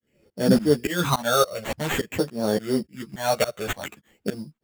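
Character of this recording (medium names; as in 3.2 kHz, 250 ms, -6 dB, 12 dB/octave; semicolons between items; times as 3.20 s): phasing stages 12, 0.5 Hz, lowest notch 280–2200 Hz; aliases and images of a low sample rate 5 kHz, jitter 0%; tremolo saw up 3.5 Hz, depth 100%; a shimmering, thickened sound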